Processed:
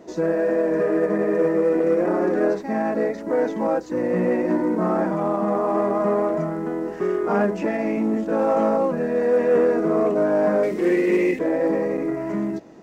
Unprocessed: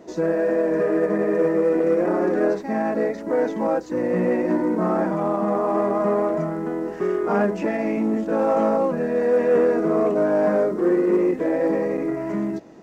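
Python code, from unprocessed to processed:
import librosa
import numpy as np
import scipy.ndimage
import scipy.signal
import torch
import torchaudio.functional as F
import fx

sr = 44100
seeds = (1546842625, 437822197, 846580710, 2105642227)

y = fx.high_shelf_res(x, sr, hz=1700.0, db=8.5, q=3.0, at=(10.63, 11.39))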